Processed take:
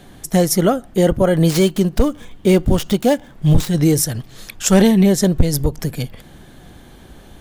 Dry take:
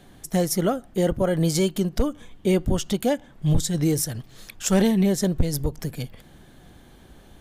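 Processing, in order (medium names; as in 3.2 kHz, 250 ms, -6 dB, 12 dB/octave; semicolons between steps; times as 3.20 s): 1.46–3.70 s: dead-time distortion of 0.058 ms; trim +7.5 dB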